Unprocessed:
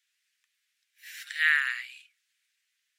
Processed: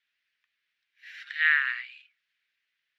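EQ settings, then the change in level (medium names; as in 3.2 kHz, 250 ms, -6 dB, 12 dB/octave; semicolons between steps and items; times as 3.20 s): distance through air 280 m; +3.5 dB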